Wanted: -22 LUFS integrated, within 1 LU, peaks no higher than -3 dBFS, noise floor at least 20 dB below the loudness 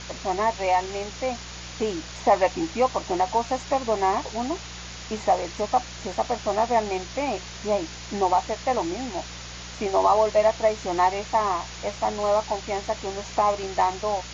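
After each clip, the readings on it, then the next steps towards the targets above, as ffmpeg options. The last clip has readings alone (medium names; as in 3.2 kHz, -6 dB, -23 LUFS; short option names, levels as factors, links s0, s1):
hum 60 Hz; highest harmonic 180 Hz; hum level -40 dBFS; noise floor -39 dBFS; noise floor target -45 dBFS; loudness -25.0 LUFS; peak level -8.0 dBFS; loudness target -22.0 LUFS
-> -af "bandreject=f=60:t=h:w=4,bandreject=f=120:t=h:w=4,bandreject=f=180:t=h:w=4"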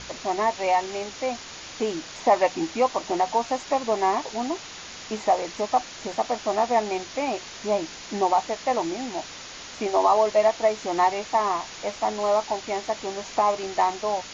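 hum not found; noise floor -40 dBFS; noise floor target -45 dBFS
-> -af "afftdn=nr=6:nf=-40"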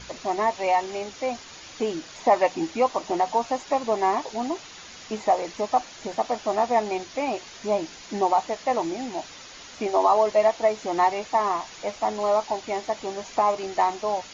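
noise floor -44 dBFS; noise floor target -46 dBFS
-> -af "afftdn=nr=6:nf=-44"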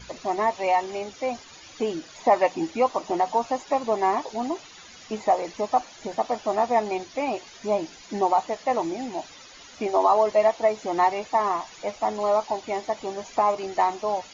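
noise floor -47 dBFS; loudness -25.5 LUFS; peak level -8.0 dBFS; loudness target -22.0 LUFS
-> -af "volume=1.5"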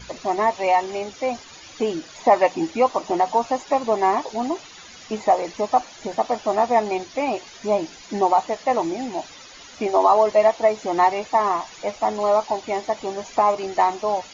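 loudness -22.0 LUFS; peak level -4.5 dBFS; noise floor -43 dBFS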